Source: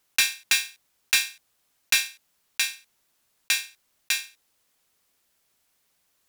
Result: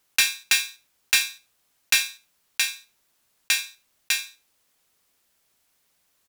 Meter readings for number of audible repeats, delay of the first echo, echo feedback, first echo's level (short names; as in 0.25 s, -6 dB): 2, 82 ms, 19%, -18.5 dB